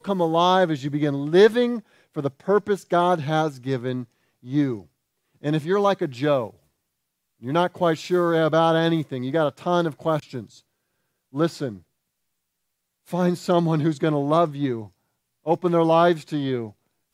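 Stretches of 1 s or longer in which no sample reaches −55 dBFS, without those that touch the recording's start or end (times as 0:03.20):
0:11.83–0:13.06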